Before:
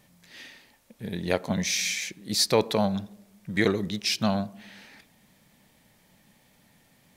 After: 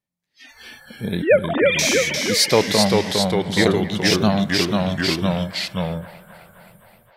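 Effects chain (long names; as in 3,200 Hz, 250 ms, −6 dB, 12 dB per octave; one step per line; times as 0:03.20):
0:01.22–0:01.79: three sine waves on the formant tracks
delay with pitch and tempo change per echo 244 ms, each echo −1 semitone, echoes 3
automatic gain control gain up to 9.5 dB
noise reduction from a noise print of the clip's start 28 dB
delay with a band-pass on its return 261 ms, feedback 71%, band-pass 1,200 Hz, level −16 dB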